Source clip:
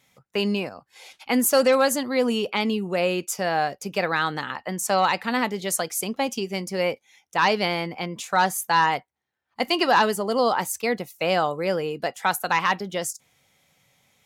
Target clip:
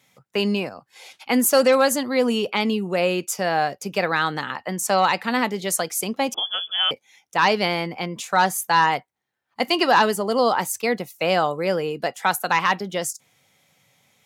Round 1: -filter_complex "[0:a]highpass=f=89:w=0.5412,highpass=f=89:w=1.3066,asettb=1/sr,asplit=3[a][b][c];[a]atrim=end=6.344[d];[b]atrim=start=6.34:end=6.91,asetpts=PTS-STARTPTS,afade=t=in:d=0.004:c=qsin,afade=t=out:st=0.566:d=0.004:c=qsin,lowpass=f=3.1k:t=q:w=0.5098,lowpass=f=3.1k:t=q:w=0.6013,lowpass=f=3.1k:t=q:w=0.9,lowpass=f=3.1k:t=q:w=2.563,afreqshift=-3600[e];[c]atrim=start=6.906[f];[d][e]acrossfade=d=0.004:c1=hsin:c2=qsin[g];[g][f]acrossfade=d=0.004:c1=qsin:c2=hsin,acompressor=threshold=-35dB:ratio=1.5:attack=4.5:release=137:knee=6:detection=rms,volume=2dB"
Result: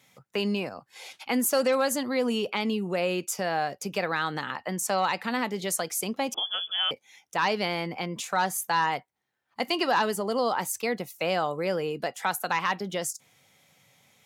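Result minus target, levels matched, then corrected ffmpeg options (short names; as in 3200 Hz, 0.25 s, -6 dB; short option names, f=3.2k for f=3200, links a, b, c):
compressor: peak gain reduction +8 dB
-filter_complex "[0:a]highpass=f=89:w=0.5412,highpass=f=89:w=1.3066,asettb=1/sr,asplit=3[a][b][c];[a]atrim=end=6.344[d];[b]atrim=start=6.34:end=6.91,asetpts=PTS-STARTPTS,afade=t=in:d=0.004:c=qsin,afade=t=out:st=0.566:d=0.004:c=qsin,lowpass=f=3.1k:t=q:w=0.5098,lowpass=f=3.1k:t=q:w=0.6013,lowpass=f=3.1k:t=q:w=0.9,lowpass=f=3.1k:t=q:w=2.563,afreqshift=-3600[e];[c]atrim=start=6.906[f];[d][e]acrossfade=d=0.004:c1=hsin:c2=qsin[g];[g][f]acrossfade=d=0.004:c1=qsin:c2=hsin,volume=2dB"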